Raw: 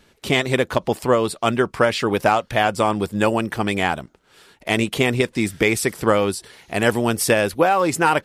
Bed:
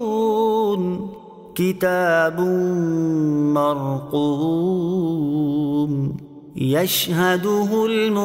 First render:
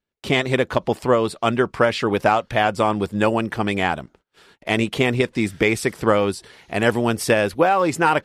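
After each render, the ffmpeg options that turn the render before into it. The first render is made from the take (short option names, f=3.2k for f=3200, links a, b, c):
-af "agate=range=-29dB:threshold=-51dB:ratio=16:detection=peak,highshelf=f=7.5k:g=-10.5"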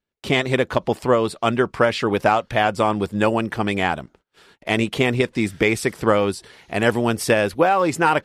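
-af anull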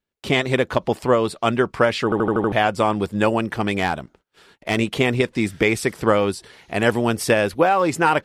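-filter_complex "[0:a]asettb=1/sr,asplit=3[a][b][c];[a]atrim=end=3.484[d];[b]atrim=start=3.48:end=4.76,asetpts=PTS-STARTPTS,afade=t=in:d=0.004:c=qsin,afade=t=out:st=1.276:d=0.004:c=qsin,asoftclip=type=hard:threshold=-12dB[e];[c]atrim=start=4.756[f];[d][e]acrossfade=d=0.004:c1=hsin:c2=qsin[g];[g][f]acrossfade=d=0.004:c1=qsin:c2=hsin,asplit=7[h][i][j][k][l][m][n];[h]atrim=end=2.122[o];[i]atrim=start=2.038:end=2.122[p];[j]atrim=start=2.038:end=2.122[q];[k]atrim=start=2.038:end=2.122[r];[l]atrim=start=2.038:end=2.122[s];[m]atrim=start=2.038:end=2.122[t];[n]atrim=start=2.518[u];[o][p]acrossfade=d=0.004:c1=hsin:c2=hsin[v];[v][q]acrossfade=d=0.004:c1=hsin:c2=hsin[w];[w][r]acrossfade=d=0.004:c1=hsin:c2=hsin[x];[x][s]acrossfade=d=0.004:c1=hsin:c2=hsin[y];[y][t]acrossfade=d=0.004:c1=hsin:c2=hsin[z];[z][u]acrossfade=d=0.004:c1=hsin:c2=hsin"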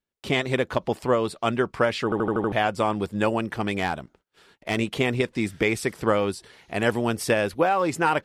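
-af "volume=-4.5dB"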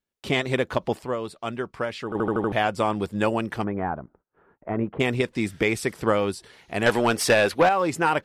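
-filter_complex "[0:a]asettb=1/sr,asplit=3[a][b][c];[a]atrim=end=3.644[d];[b]atrim=start=3.64:end=5,asetpts=PTS-STARTPTS,afade=t=in:d=0.004:c=qsin,afade=t=out:st=1.356:d=0.004:c=qsin,lowpass=f=1.4k:w=0.5412,lowpass=f=1.4k:w=1.3066[e];[c]atrim=start=4.996[f];[d][e]acrossfade=d=0.004:c1=hsin:c2=qsin[g];[g][f]acrossfade=d=0.004:c1=qsin:c2=hsin,asettb=1/sr,asplit=3[h][i][j];[h]atrim=end=6.864[k];[i]atrim=start=6.86:end=7.69,asetpts=PTS-STARTPTS,afade=t=in:d=0.004:c=qsin,afade=t=out:st=0.826:d=0.004:c=qsin,asplit=2[l][m];[m]highpass=f=720:p=1,volume=16dB,asoftclip=type=tanh:threshold=-9dB[n];[l][n]amix=inputs=2:normalize=0,lowpass=f=5.6k:p=1,volume=-6dB[o];[j]atrim=start=7.686[p];[k][o]acrossfade=d=0.004:c1=hsin:c2=qsin[q];[q][p]acrossfade=d=0.004:c1=qsin:c2=hsin,asplit=3[r][s][t];[r]atrim=end=1.022[u];[s]atrim=start=1.018:end=2.152,asetpts=PTS-STARTPTS,volume=-6.5dB[v];[t]atrim=start=2.148[w];[u][v]acrossfade=d=0.004:c1=hsin:c2=hsin[x];[x][w]acrossfade=d=0.004:c1=hsin:c2=hsin"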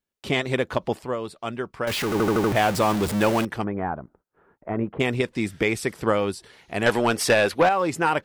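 -filter_complex "[0:a]asettb=1/sr,asplit=3[a][b][c];[a]atrim=end=1.874[d];[b]atrim=start=1.87:end=3.45,asetpts=PTS-STARTPTS,afade=t=in:d=0.004:c=qsin,afade=t=out:st=1.576:d=0.004:c=qsin,aeval=exprs='val(0)+0.5*0.0668*sgn(val(0))':c=same[e];[c]atrim=start=3.446[f];[d][e]acrossfade=d=0.004:c1=hsin:c2=qsin[g];[g][f]acrossfade=d=0.004:c1=qsin:c2=hsin"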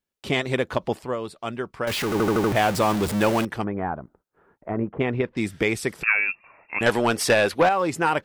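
-filter_complex "[0:a]asettb=1/sr,asplit=3[a][b][c];[a]atrim=end=4.714[d];[b]atrim=start=4.71:end=5.37,asetpts=PTS-STARTPTS,afade=t=in:d=0.004:c=qsin,afade=t=out:st=0.656:d=0.004:c=qsin,lowpass=2k[e];[c]atrim=start=5.366[f];[d][e]acrossfade=d=0.004:c1=hsin:c2=qsin[g];[g][f]acrossfade=d=0.004:c1=qsin:c2=hsin,asettb=1/sr,asplit=3[h][i][j];[h]atrim=end=6.034[k];[i]atrim=start=6.03:end=6.81,asetpts=PTS-STARTPTS,afade=t=in:d=0.004:c=qsin,afade=t=out:st=0.776:d=0.004:c=qsin,lowpass=f=2.4k:t=q:w=0.5098,lowpass=f=2.4k:t=q:w=0.6013,lowpass=f=2.4k:t=q:w=0.9,lowpass=f=2.4k:t=q:w=2.563,afreqshift=-2800[l];[j]atrim=start=6.806[m];[k][l]acrossfade=d=0.004:c1=hsin:c2=qsin[n];[n][m]acrossfade=d=0.004:c1=qsin:c2=hsin"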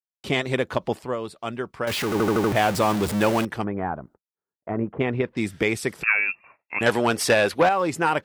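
-af "highpass=50,agate=range=-35dB:threshold=-49dB:ratio=16:detection=peak"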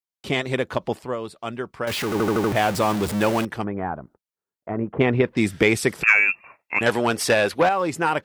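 -filter_complex "[0:a]asettb=1/sr,asplit=3[a][b][c];[a]atrim=end=4.934[d];[b]atrim=start=4.93:end=6.8,asetpts=PTS-STARTPTS,afade=t=in:d=0.004:c=qsin,afade=t=out:st=1.866:d=0.004:c=qsin,acontrast=35[e];[c]atrim=start=6.796[f];[d][e]acrossfade=d=0.004:c1=hsin:c2=qsin[g];[g][f]acrossfade=d=0.004:c1=qsin:c2=hsin"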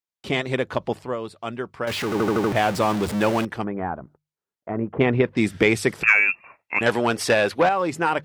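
-af "highshelf=f=8.5k:g=-7,bandreject=f=50:t=h:w=6,bandreject=f=100:t=h:w=6,bandreject=f=150:t=h:w=6"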